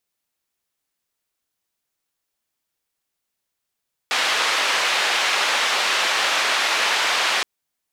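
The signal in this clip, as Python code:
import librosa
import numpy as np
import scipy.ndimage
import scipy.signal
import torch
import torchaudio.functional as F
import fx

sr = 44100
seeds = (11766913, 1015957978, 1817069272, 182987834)

y = fx.band_noise(sr, seeds[0], length_s=3.32, low_hz=660.0, high_hz=3300.0, level_db=-20.5)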